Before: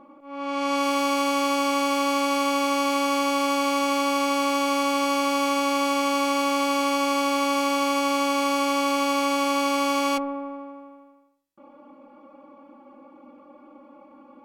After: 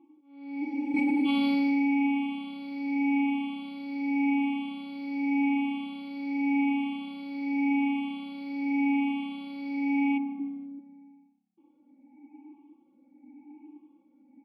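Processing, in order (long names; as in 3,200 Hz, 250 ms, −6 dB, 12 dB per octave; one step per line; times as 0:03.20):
rippled gain that drifts along the octave scale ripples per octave 0.66, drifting +0.87 Hz, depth 17 dB
0:00.64–0:01.23: healed spectral selection 220–4,300 Hz before
0:10.39–0:10.79: low shelf with overshoot 440 Hz +9 dB, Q 1.5
formant filter u
phaser with its sweep stopped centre 2,900 Hz, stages 4
echo with shifted repeats 159 ms, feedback 40%, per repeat −33 Hz, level −21.5 dB
0:00.94–0:02.07: envelope flattener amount 100%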